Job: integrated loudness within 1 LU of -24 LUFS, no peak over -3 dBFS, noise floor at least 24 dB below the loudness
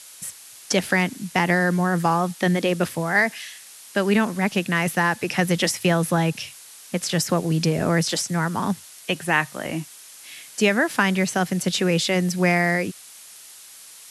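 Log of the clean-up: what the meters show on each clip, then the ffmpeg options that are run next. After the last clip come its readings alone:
noise floor -45 dBFS; noise floor target -46 dBFS; loudness -22.0 LUFS; peak -4.5 dBFS; loudness target -24.0 LUFS
-> -af "afftdn=nr=6:nf=-45"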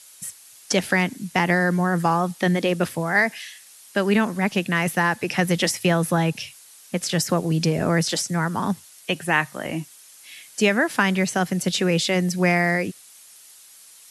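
noise floor -48 dBFS; loudness -22.0 LUFS; peak -4.5 dBFS; loudness target -24.0 LUFS
-> -af "volume=-2dB"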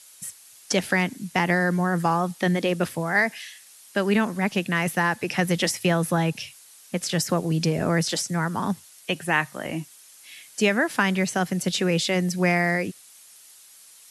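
loudness -24.0 LUFS; peak -6.5 dBFS; noise floor -50 dBFS

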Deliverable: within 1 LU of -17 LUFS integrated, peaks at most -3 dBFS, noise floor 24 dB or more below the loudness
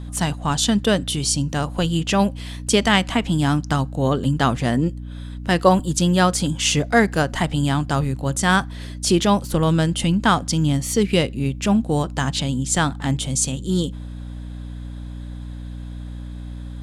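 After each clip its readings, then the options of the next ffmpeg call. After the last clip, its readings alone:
hum 60 Hz; harmonics up to 300 Hz; hum level -30 dBFS; loudness -20.0 LUFS; peak -2.5 dBFS; loudness target -17.0 LUFS
-> -af "bandreject=f=60:t=h:w=6,bandreject=f=120:t=h:w=6,bandreject=f=180:t=h:w=6,bandreject=f=240:t=h:w=6,bandreject=f=300:t=h:w=6"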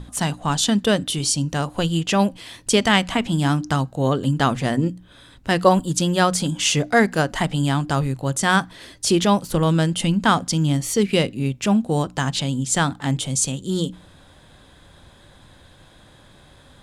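hum none; loudness -20.5 LUFS; peak -2.0 dBFS; loudness target -17.0 LUFS
-> -af "volume=3.5dB,alimiter=limit=-3dB:level=0:latency=1"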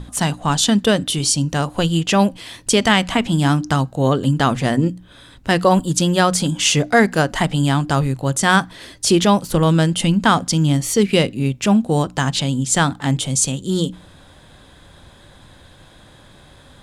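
loudness -17.5 LUFS; peak -3.0 dBFS; noise floor -47 dBFS

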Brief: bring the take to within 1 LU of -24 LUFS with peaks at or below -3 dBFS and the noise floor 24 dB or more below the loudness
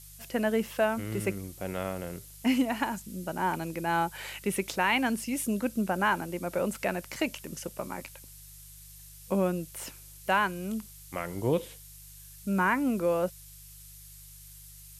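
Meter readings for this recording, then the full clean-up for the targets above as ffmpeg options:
hum 50 Hz; harmonics up to 150 Hz; hum level -51 dBFS; noise floor -50 dBFS; noise floor target -55 dBFS; loudness -30.5 LUFS; peak -12.5 dBFS; loudness target -24.0 LUFS
-> -af "bandreject=f=50:t=h:w=4,bandreject=f=100:t=h:w=4,bandreject=f=150:t=h:w=4"
-af "afftdn=nr=6:nf=-50"
-af "volume=6.5dB"

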